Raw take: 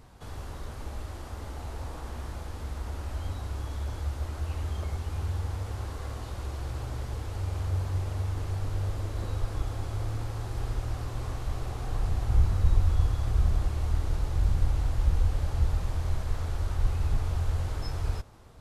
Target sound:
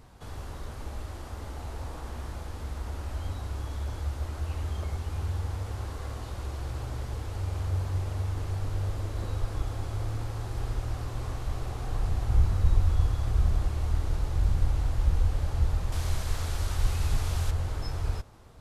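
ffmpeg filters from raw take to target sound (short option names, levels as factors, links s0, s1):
-filter_complex "[0:a]asettb=1/sr,asplit=3[s0][s1][s2];[s0]atrim=end=15.924[s3];[s1]atrim=start=15.92:end=17.51,asetpts=PTS-STARTPTS,afade=t=in:d=0.004:c=qsin,afade=t=out:st=1.586:d=0.004:c=qsin,highshelf=f=2000:g=10.5[s4];[s2]atrim=start=17.506[s5];[s3][s4]acrossfade=d=0.004:c1=hsin:c2=qsin[s6];[s6][s5]acrossfade=d=0.004:c1=qsin:c2=hsin"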